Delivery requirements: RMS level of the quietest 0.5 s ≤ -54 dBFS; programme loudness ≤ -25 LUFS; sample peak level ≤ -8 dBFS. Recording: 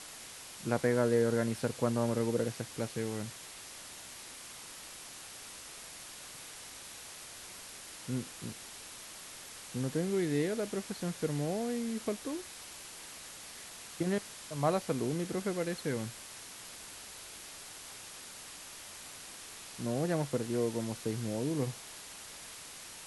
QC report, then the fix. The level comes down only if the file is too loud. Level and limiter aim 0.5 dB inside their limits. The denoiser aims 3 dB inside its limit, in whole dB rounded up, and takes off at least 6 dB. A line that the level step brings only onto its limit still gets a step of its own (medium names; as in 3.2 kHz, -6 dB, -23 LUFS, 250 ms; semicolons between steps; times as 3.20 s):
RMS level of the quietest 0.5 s -48 dBFS: fail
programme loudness -37.0 LUFS: pass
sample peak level -15.5 dBFS: pass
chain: noise reduction 9 dB, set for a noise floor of -48 dBFS